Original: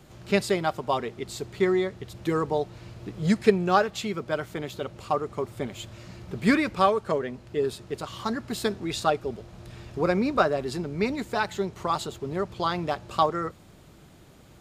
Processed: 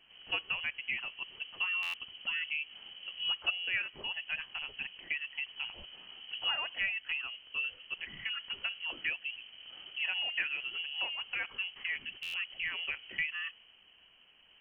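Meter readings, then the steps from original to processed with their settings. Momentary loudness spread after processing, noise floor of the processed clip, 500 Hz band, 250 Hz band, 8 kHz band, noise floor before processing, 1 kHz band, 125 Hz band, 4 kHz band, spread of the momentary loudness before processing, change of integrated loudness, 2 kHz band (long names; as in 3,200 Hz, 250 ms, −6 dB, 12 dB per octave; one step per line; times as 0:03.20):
9 LU, −62 dBFS, −31.5 dB, −34.0 dB, below −25 dB, −52 dBFS, −21.5 dB, below −30 dB, +3.0 dB, 13 LU, −8.0 dB, +0.5 dB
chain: voice inversion scrambler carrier 3,100 Hz
downward compressor 2 to 1, threshold −27 dBFS, peak gain reduction 8.5 dB
buffer that repeats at 0:01.82/0:12.22, samples 512, times 9
one half of a high-frequency compander decoder only
level −7 dB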